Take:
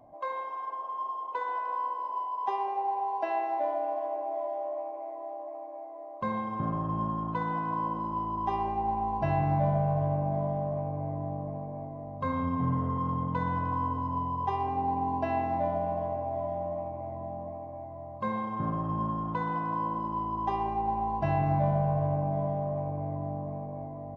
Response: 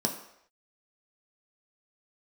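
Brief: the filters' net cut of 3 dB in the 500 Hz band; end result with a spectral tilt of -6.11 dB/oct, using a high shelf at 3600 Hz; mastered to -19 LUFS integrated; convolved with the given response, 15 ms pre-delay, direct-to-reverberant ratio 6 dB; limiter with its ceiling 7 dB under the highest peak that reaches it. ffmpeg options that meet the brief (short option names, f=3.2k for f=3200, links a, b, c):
-filter_complex "[0:a]equalizer=f=500:t=o:g=-4.5,highshelf=f=3.6k:g=6,alimiter=limit=-24dB:level=0:latency=1,asplit=2[a][b];[1:a]atrim=start_sample=2205,adelay=15[c];[b][c]afir=irnorm=-1:irlink=0,volume=-13dB[d];[a][d]amix=inputs=2:normalize=0,volume=11.5dB"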